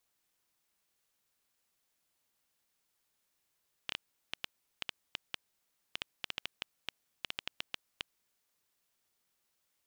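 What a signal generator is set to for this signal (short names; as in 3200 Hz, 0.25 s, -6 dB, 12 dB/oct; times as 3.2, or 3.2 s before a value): random clicks 5.2/s -17 dBFS 4.53 s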